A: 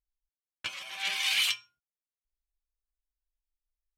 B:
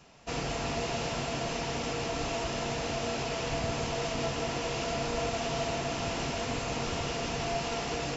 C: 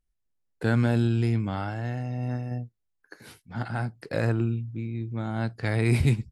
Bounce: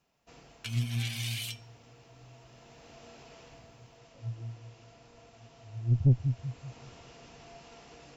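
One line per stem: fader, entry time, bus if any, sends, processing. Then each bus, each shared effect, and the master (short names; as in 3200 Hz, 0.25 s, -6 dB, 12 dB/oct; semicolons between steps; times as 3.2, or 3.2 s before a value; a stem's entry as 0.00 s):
-7.5 dB, 0.00 s, no send, no echo send, tilt +4 dB/oct; compressor 5:1, threshold -27 dBFS, peak gain reduction 10.5 dB
-17.5 dB, 0.00 s, no send, no echo send, auto duck -6 dB, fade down 0.40 s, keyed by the third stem
+2.0 dB, 0.00 s, no send, echo send -9.5 dB, LPF 1000 Hz; spectral expander 4:1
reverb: off
echo: feedback echo 0.193 s, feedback 41%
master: tube stage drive 15 dB, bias 0.45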